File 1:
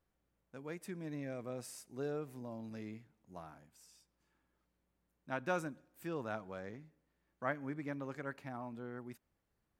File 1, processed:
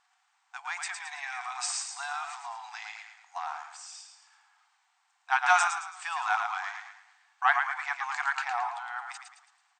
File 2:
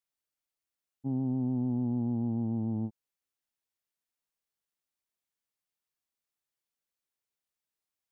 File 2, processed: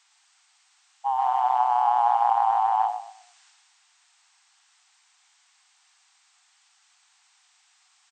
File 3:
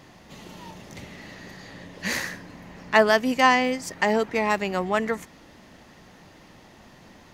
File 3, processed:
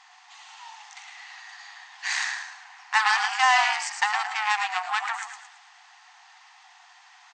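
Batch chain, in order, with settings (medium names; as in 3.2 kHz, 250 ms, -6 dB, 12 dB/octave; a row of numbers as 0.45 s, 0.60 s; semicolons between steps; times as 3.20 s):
transient shaper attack 0 dB, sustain +5 dB; on a send: frequency-shifting echo 110 ms, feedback 41%, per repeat -42 Hz, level -6 dB; on the sum: Chebyshev shaper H 8 -19 dB, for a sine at -3 dBFS; brick-wall FIR band-pass 700–8700 Hz; loudness maximiser +8 dB; peak normalisation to -9 dBFS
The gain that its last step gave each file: +9.5 dB, +22.0 dB, -8.0 dB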